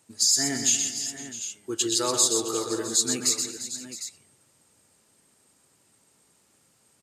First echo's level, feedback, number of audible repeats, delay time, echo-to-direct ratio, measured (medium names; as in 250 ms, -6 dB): -6.0 dB, no regular repeats, 6, 125 ms, -4.0 dB